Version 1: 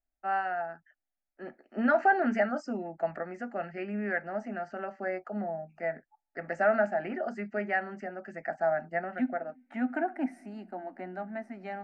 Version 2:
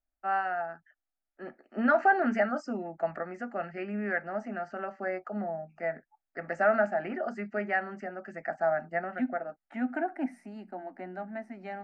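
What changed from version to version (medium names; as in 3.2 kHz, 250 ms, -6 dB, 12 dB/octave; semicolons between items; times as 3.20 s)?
first voice: add peaking EQ 1.2 kHz +4.5 dB 0.39 oct; reverb: off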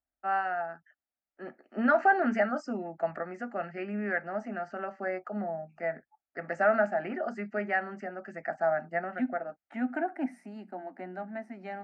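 master: add high-pass 59 Hz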